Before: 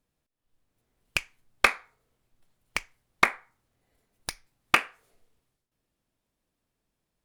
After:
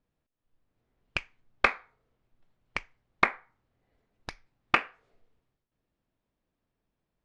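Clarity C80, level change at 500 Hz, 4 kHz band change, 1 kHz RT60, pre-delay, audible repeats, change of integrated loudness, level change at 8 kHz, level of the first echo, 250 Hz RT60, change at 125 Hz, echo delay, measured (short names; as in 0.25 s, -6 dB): none, -0.5 dB, -6.0 dB, none, none, none, -2.5 dB, -16.0 dB, none, none, 0.0 dB, none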